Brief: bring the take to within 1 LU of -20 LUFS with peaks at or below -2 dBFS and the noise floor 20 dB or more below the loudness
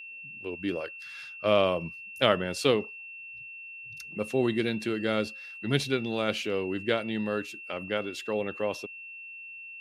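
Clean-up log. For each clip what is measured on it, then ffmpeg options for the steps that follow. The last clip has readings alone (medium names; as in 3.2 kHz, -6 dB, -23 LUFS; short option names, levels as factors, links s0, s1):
steady tone 2.7 kHz; tone level -41 dBFS; loudness -29.5 LUFS; peak level -6.5 dBFS; loudness target -20.0 LUFS
-> -af "bandreject=f=2700:w=30"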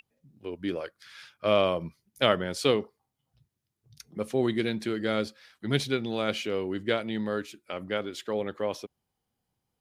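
steady tone not found; loudness -29.5 LUFS; peak level -6.5 dBFS; loudness target -20.0 LUFS
-> -af "volume=2.99,alimiter=limit=0.794:level=0:latency=1"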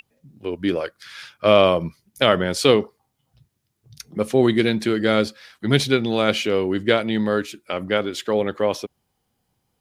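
loudness -20.5 LUFS; peak level -2.0 dBFS; noise floor -73 dBFS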